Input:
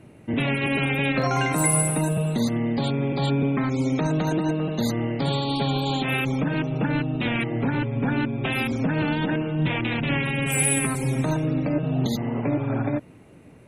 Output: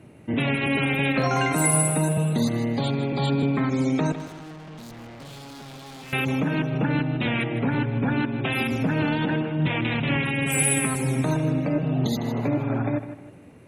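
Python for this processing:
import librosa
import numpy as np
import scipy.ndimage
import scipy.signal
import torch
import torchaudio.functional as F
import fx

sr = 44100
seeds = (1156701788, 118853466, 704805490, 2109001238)

y = scipy.signal.sosfilt(scipy.signal.butter(2, 49.0, 'highpass', fs=sr, output='sos'), x)
y = fx.tube_stage(y, sr, drive_db=40.0, bias=0.65, at=(4.12, 6.13))
y = fx.echo_feedback(y, sr, ms=156, feedback_pct=36, wet_db=-11.5)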